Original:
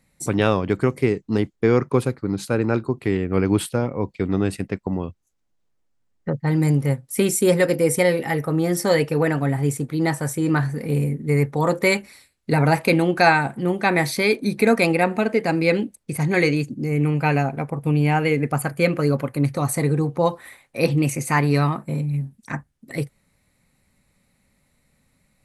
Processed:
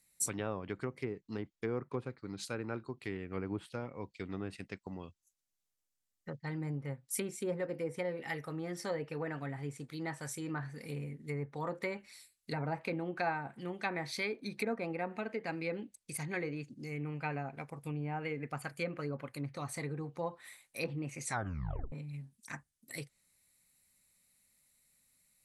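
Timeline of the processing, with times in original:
21.24 tape stop 0.68 s
whole clip: treble ducked by the level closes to 1000 Hz, closed at -14 dBFS; pre-emphasis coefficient 0.9

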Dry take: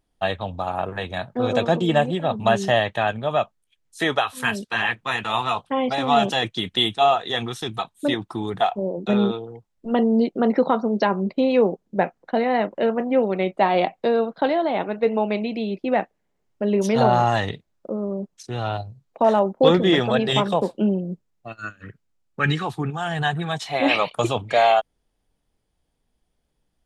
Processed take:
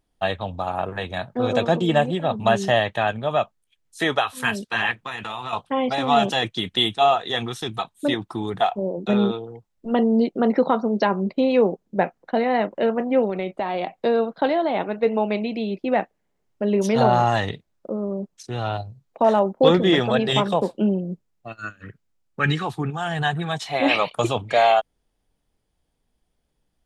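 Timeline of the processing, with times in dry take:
4.91–5.53 compressor, threshold -27 dBFS
13.29–13.99 compressor, threshold -21 dBFS

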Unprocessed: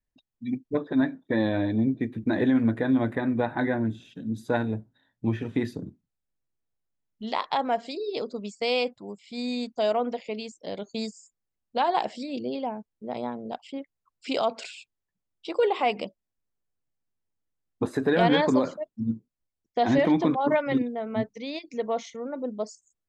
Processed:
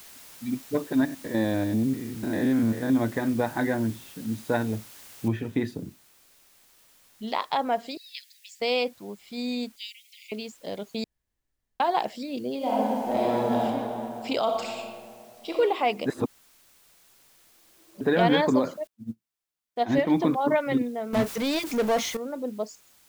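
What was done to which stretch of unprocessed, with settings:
1.05–2.9 stepped spectrum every 0.1 s
5.28 noise floor step -48 dB -59 dB
7.97–8.6 steep high-pass 1700 Hz 96 dB/oct
9.76–10.32 steep high-pass 2100 Hz 96 dB/oct
11.04–11.8 room tone
12.57–13.63 reverb throw, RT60 2.9 s, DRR -9 dB
14.42–15.56 reverb throw, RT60 1.4 s, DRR 1 dB
16.06–18.01 reverse
18.87–20.12 upward expander 2.5:1, over -39 dBFS
21.13–22.17 power-law curve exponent 0.5

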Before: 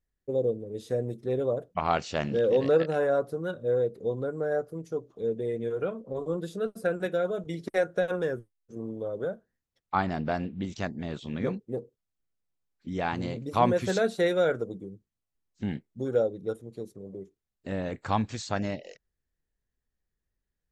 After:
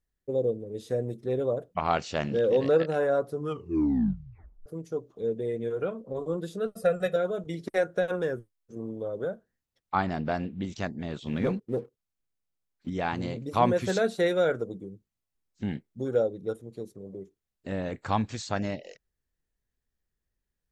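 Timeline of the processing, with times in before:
3.3 tape stop 1.36 s
6.71–7.16 comb 1.6 ms, depth 89%
11.26–12.9 sample leveller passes 1

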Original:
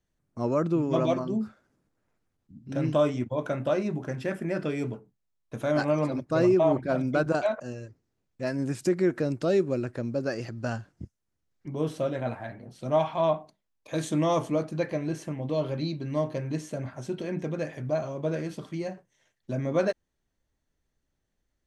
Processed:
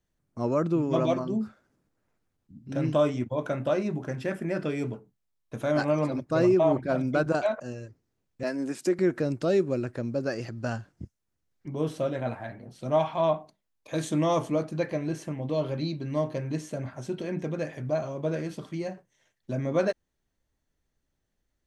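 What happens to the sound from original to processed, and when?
8.43–8.99 HPF 210 Hz 24 dB/oct

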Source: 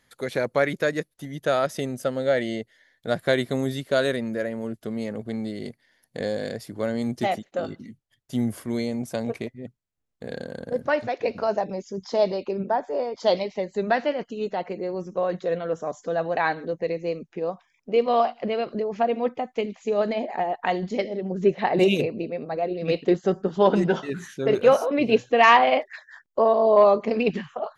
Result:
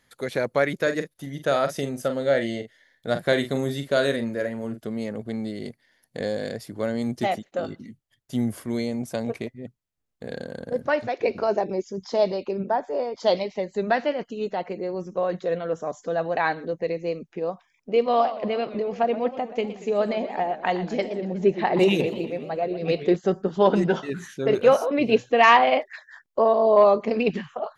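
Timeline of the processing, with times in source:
0.82–4.81 doubler 43 ms -9 dB
11.18–11.84 small resonant body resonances 370/2300 Hz, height 10 dB
18.04–23.16 warbling echo 0.121 s, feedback 59%, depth 210 cents, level -14 dB

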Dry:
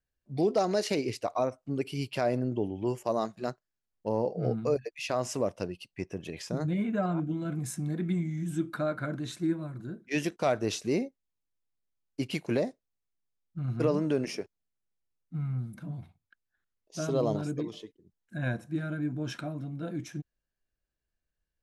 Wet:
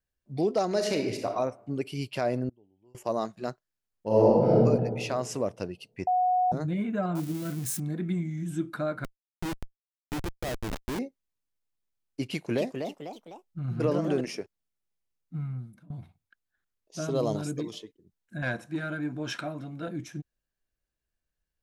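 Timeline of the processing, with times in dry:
0.67–1.3 reverb throw, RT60 0.82 s, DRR 3.5 dB
2.49–2.95 flipped gate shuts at -35 dBFS, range -31 dB
4.07–4.55 reverb throw, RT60 1.5 s, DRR -9.5 dB
6.07–6.52 bleep 732 Hz -21 dBFS
7.15–7.8 switching spikes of -29.5 dBFS
9.04–10.99 Schmitt trigger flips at -27.5 dBFS
12.27–14.21 echoes that change speed 0.279 s, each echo +2 st, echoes 3, each echo -6 dB
15.38–15.9 fade out linear, to -19.5 dB
17.14–17.78 high shelf 5400 Hz -> 3600 Hz +11.5 dB
18.42–19.88 overdrive pedal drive 12 dB, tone 6500 Hz, clips at -19 dBFS

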